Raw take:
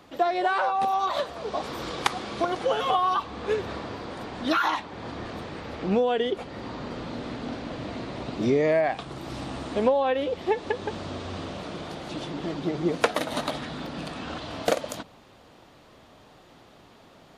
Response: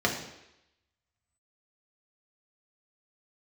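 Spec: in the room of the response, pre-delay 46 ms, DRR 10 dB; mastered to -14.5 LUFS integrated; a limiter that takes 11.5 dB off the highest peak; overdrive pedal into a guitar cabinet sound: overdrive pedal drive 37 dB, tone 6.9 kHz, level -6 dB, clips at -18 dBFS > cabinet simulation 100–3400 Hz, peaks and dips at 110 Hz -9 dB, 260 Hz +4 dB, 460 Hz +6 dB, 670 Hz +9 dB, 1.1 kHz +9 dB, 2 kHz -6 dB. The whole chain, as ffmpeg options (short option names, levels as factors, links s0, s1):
-filter_complex "[0:a]alimiter=limit=0.0794:level=0:latency=1,asplit=2[s0][s1];[1:a]atrim=start_sample=2205,adelay=46[s2];[s1][s2]afir=irnorm=-1:irlink=0,volume=0.075[s3];[s0][s3]amix=inputs=2:normalize=0,asplit=2[s4][s5];[s5]highpass=f=720:p=1,volume=70.8,asoftclip=type=tanh:threshold=0.126[s6];[s4][s6]amix=inputs=2:normalize=0,lowpass=f=6900:p=1,volume=0.501,highpass=100,equalizer=f=110:t=q:w=4:g=-9,equalizer=f=260:t=q:w=4:g=4,equalizer=f=460:t=q:w=4:g=6,equalizer=f=670:t=q:w=4:g=9,equalizer=f=1100:t=q:w=4:g=9,equalizer=f=2000:t=q:w=4:g=-6,lowpass=f=3400:w=0.5412,lowpass=f=3400:w=1.3066,volume=1.78"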